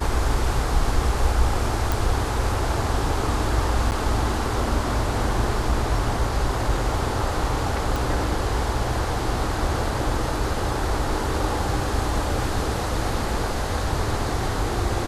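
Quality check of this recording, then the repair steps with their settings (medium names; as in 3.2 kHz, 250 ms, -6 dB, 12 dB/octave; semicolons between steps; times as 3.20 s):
1.92 s: pop
3.91–3.92 s: dropout 9.5 ms
7.96 s: pop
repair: de-click; interpolate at 3.91 s, 9.5 ms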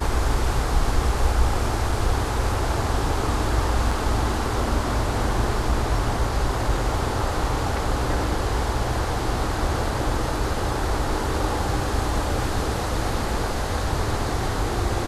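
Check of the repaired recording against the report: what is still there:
7.96 s: pop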